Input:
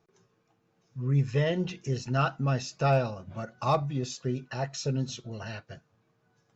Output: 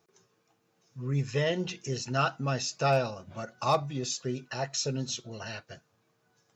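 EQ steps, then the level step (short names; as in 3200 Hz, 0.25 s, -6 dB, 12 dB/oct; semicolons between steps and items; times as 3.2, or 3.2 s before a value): HPF 47 Hz; tone controls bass -5 dB, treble +2 dB; high shelf 3900 Hz +6.5 dB; 0.0 dB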